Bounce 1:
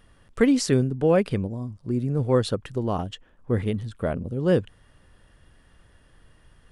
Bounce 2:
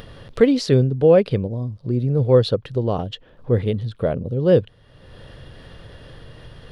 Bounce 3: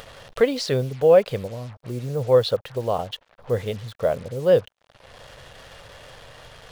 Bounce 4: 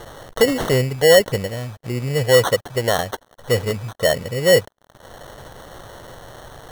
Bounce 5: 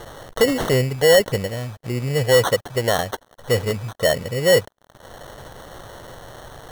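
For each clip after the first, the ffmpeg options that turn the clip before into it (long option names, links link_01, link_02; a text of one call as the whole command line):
ffmpeg -i in.wav -filter_complex "[0:a]equalizer=frequency=125:width_type=o:width=1:gain=9,equalizer=frequency=500:width_type=o:width=1:gain=10,equalizer=frequency=4000:width_type=o:width=1:gain=11,equalizer=frequency=8000:width_type=o:width=1:gain=-10,asplit=2[link_01][link_02];[link_02]acompressor=mode=upward:threshold=-18dB:ratio=2.5,volume=2dB[link_03];[link_01][link_03]amix=inputs=2:normalize=0,volume=-9.5dB" out.wav
ffmpeg -i in.wav -af "acrusher=bits=6:mix=0:aa=0.5,lowshelf=frequency=440:width_type=q:width=1.5:gain=-8.5" out.wav
ffmpeg -i in.wav -filter_complex "[0:a]asplit=2[link_01][link_02];[link_02]alimiter=limit=-15dB:level=0:latency=1:release=17,volume=-1dB[link_03];[link_01][link_03]amix=inputs=2:normalize=0,acrusher=samples=18:mix=1:aa=0.000001" out.wav
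ffmpeg -i in.wav -af "asoftclip=type=tanh:threshold=-6dB" out.wav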